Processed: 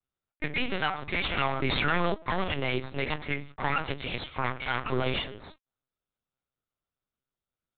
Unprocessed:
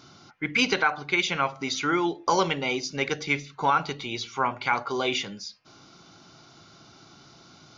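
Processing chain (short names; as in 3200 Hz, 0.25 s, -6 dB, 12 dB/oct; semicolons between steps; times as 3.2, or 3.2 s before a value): minimum comb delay 7.6 ms; 3.17–3.59 LPF 2500 Hz; gate -45 dBFS, range -41 dB; limiter -19.5 dBFS, peak gain reduction 9.5 dB; LPC vocoder at 8 kHz pitch kept; 1.37–2.15 fast leveller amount 70%; gain +2 dB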